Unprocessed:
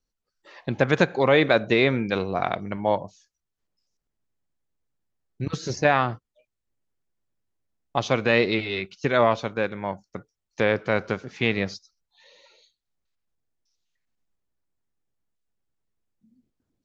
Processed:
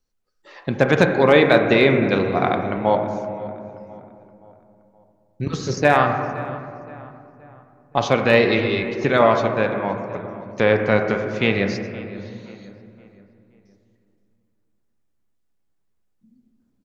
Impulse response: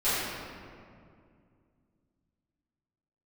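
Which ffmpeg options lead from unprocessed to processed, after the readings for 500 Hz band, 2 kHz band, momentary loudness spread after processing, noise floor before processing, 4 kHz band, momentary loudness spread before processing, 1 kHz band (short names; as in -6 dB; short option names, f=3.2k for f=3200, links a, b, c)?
+6.0 dB, +4.5 dB, 18 LU, -83 dBFS, +3.0 dB, 14 LU, +5.5 dB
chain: -filter_complex "[0:a]volume=7dB,asoftclip=hard,volume=-7dB,asplit=2[a][b];[b]adelay=522,lowpass=f=2.5k:p=1,volume=-17dB,asplit=2[c][d];[d]adelay=522,lowpass=f=2.5k:p=1,volume=0.46,asplit=2[e][f];[f]adelay=522,lowpass=f=2.5k:p=1,volume=0.46,asplit=2[g][h];[h]adelay=522,lowpass=f=2.5k:p=1,volume=0.46[i];[a][c][e][g][i]amix=inputs=5:normalize=0,asplit=2[j][k];[1:a]atrim=start_sample=2205,lowpass=2.2k[l];[k][l]afir=irnorm=-1:irlink=0,volume=-16dB[m];[j][m]amix=inputs=2:normalize=0,volume=3dB"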